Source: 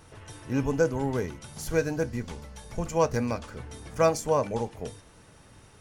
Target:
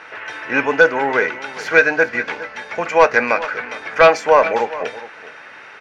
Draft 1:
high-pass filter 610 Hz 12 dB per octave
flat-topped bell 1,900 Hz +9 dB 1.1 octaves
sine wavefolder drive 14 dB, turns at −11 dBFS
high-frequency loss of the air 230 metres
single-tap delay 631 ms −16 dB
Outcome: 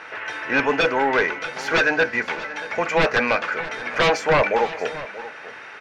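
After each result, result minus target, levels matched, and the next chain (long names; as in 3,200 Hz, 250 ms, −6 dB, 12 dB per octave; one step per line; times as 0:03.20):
sine wavefolder: distortion +16 dB; echo 218 ms late
high-pass filter 610 Hz 12 dB per octave
flat-topped bell 1,900 Hz +9 dB 1.1 octaves
sine wavefolder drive 14 dB, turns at −1.5 dBFS
high-frequency loss of the air 230 metres
single-tap delay 631 ms −16 dB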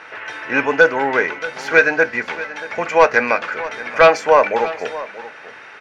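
echo 218 ms late
high-pass filter 610 Hz 12 dB per octave
flat-topped bell 1,900 Hz +9 dB 1.1 octaves
sine wavefolder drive 14 dB, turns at −1.5 dBFS
high-frequency loss of the air 230 metres
single-tap delay 413 ms −16 dB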